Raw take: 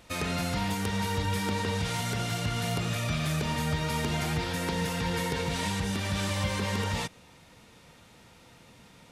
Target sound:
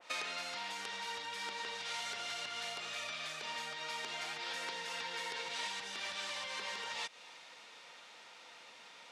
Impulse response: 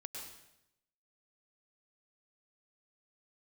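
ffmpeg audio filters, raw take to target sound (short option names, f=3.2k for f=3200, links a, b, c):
-af "acompressor=threshold=-37dB:ratio=12,highpass=680,lowpass=5.6k,adynamicequalizer=threshold=0.001:dfrequency=2100:dqfactor=0.7:tfrequency=2100:tqfactor=0.7:attack=5:release=100:ratio=0.375:range=2.5:mode=boostabove:tftype=highshelf,volume=2dB"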